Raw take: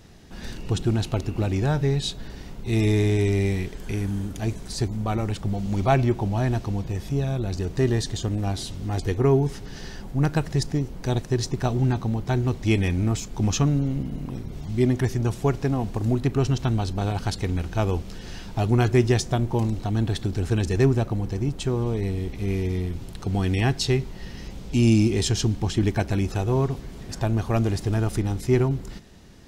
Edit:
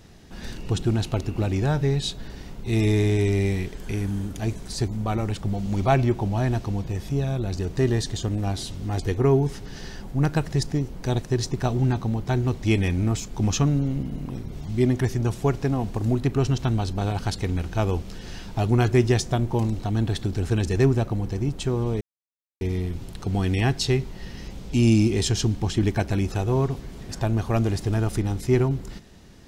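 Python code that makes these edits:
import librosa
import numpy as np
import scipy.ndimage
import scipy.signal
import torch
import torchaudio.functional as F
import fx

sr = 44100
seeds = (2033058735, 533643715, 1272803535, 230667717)

y = fx.edit(x, sr, fx.silence(start_s=22.01, length_s=0.6), tone=tone)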